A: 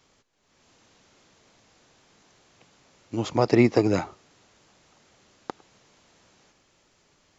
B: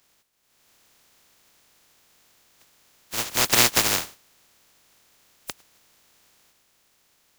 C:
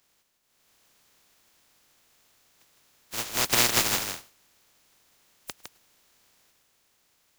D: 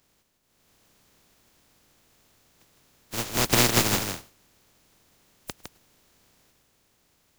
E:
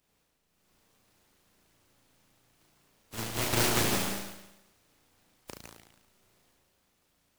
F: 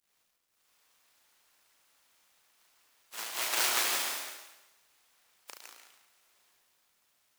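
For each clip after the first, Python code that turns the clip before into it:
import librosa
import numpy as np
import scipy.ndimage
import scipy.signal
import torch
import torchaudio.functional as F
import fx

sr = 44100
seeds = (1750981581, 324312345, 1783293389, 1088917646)

y1 = fx.spec_flatten(x, sr, power=0.1)
y2 = y1 + 10.0 ** (-6.0 / 20.0) * np.pad(y1, (int(158 * sr / 1000.0), 0))[:len(y1)]
y2 = y2 * 10.0 ** (-4.5 / 20.0)
y3 = fx.low_shelf(y2, sr, hz=490.0, db=11.0)
y4 = fx.room_flutter(y3, sr, wall_m=6.1, rt60_s=0.96)
y4 = fx.noise_mod_delay(y4, sr, seeds[0], noise_hz=1400.0, depth_ms=0.13)
y4 = y4 * 10.0 ** (-8.5 / 20.0)
y5 = scipy.signal.sosfilt(scipy.signal.butter(2, 890.0, 'highpass', fs=sr, output='sos'), y4)
y5 = fx.quant_dither(y5, sr, seeds[1], bits=12, dither='none')
y5 = fx.rev_plate(y5, sr, seeds[2], rt60_s=0.55, hf_ratio=0.9, predelay_ms=115, drr_db=7.5)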